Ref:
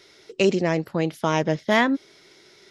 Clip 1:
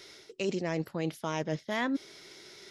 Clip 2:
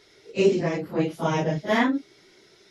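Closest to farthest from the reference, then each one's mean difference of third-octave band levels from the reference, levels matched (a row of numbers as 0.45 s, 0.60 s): 2, 1; 3.5 dB, 5.5 dB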